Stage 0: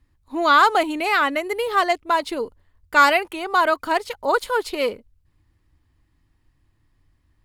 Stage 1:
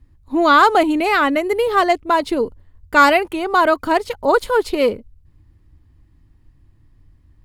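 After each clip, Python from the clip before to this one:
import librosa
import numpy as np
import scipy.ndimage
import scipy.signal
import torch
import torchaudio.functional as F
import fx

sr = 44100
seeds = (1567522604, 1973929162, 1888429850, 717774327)

y = fx.low_shelf(x, sr, hz=470.0, db=11.5)
y = y * librosa.db_to_amplitude(1.0)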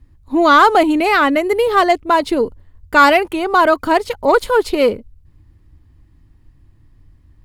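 y = 10.0 ** (-2.5 / 20.0) * np.tanh(x / 10.0 ** (-2.5 / 20.0))
y = y * librosa.db_to_amplitude(3.0)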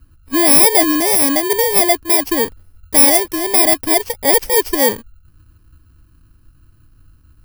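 y = fx.bit_reversed(x, sr, seeds[0], block=32)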